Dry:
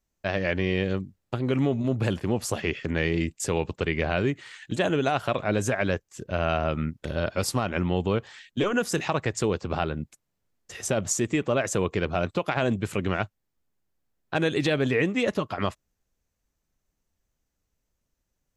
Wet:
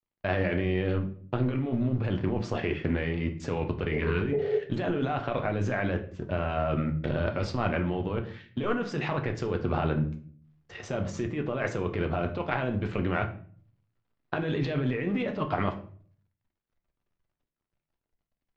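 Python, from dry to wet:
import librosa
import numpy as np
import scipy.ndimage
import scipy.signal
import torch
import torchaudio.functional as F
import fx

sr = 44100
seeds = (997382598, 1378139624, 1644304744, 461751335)

y = fx.law_mismatch(x, sr, coded='A')
y = fx.spec_repair(y, sr, seeds[0], start_s=3.93, length_s=0.63, low_hz=390.0, high_hz=900.0, source='before')
y = fx.over_compress(y, sr, threshold_db=-29.0, ratio=-1.0)
y = scipy.ndimage.gaussian_filter1d(y, 2.3, mode='constant')
y = fx.room_shoebox(y, sr, seeds[1], volume_m3=51.0, walls='mixed', distance_m=0.37)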